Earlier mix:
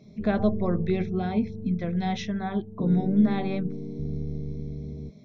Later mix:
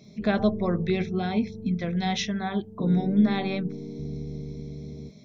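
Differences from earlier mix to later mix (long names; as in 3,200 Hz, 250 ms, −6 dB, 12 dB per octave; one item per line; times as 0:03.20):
background: add low-shelf EQ 85 Hz −10 dB
master: add high-shelf EQ 2,200 Hz +10.5 dB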